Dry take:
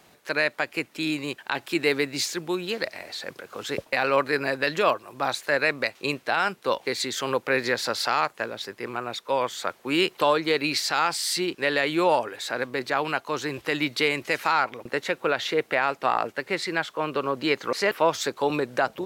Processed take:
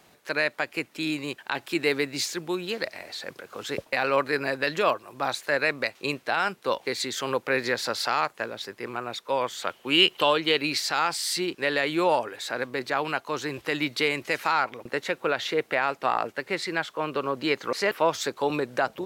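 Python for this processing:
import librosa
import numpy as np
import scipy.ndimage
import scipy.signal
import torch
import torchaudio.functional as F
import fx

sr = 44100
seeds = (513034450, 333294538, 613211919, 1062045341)

y = fx.peak_eq(x, sr, hz=3000.0, db=12.5, octaves=0.34, at=(9.62, 10.61))
y = y * 10.0 ** (-1.5 / 20.0)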